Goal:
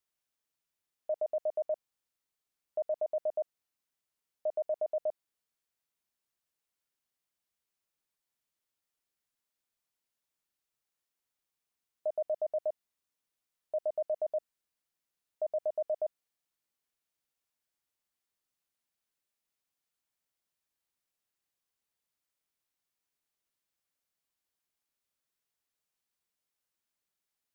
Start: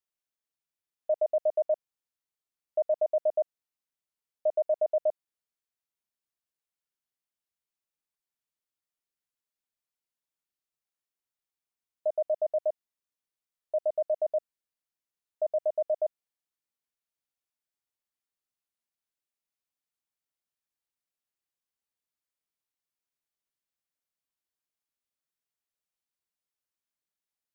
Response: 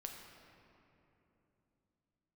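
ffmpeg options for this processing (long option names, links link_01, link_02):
-af "alimiter=level_in=6dB:limit=-24dB:level=0:latency=1:release=22,volume=-6dB,volume=3.5dB"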